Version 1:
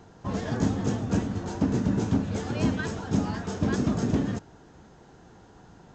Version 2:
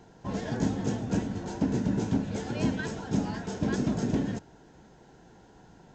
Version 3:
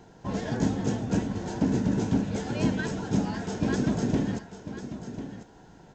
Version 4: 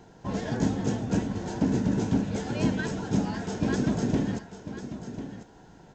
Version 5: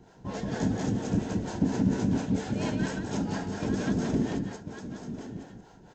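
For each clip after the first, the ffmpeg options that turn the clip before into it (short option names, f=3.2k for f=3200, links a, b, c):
-af "equalizer=f=86:t=o:w=0.47:g=-7.5,bandreject=f=1.2k:w=5.8,volume=-2dB"
-af "aecho=1:1:1045:0.266,volume=2dB"
-af anull
-filter_complex "[0:a]aecho=1:1:75|178:0.316|0.708,acrossover=split=410[a][b];[a]aeval=exprs='val(0)*(1-0.7/2+0.7/2*cos(2*PI*4.3*n/s))':c=same[c];[b]aeval=exprs='val(0)*(1-0.7/2-0.7/2*cos(2*PI*4.3*n/s))':c=same[d];[c][d]amix=inputs=2:normalize=0"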